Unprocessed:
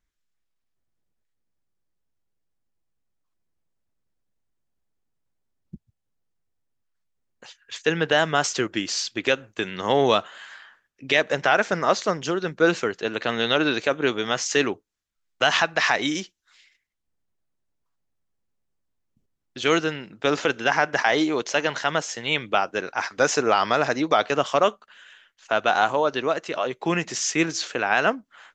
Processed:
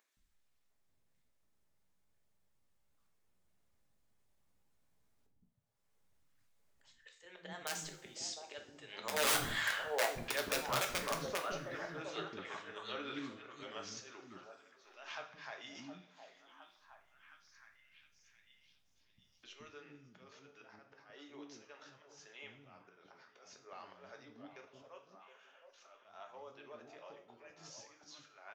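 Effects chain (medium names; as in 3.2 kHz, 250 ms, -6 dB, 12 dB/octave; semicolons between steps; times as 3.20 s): Doppler pass-by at 9.69 s, 28 m/s, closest 2.8 m; dynamic bell 310 Hz, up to +3 dB, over -58 dBFS, Q 2.5; in parallel at 0 dB: upward compressor, threshold -46 dBFS; on the sum: slow attack 186 ms; on a send: repeats whose band climbs or falls 715 ms, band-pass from 620 Hz, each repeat 0.7 oct, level -6 dB; on the sum: integer overflow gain 27.5 dB; bands offset in time highs, lows 170 ms, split 340 Hz; two-slope reverb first 0.4 s, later 1.8 s, from -19 dB, DRR 2.5 dB; trim +1 dB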